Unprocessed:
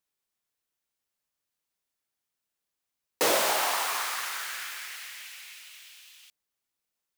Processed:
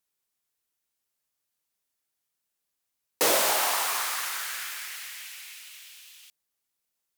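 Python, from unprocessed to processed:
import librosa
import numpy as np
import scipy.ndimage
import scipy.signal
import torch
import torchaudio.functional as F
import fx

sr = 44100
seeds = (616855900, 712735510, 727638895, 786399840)

y = fx.peak_eq(x, sr, hz=14000.0, db=5.0, octaves=1.7)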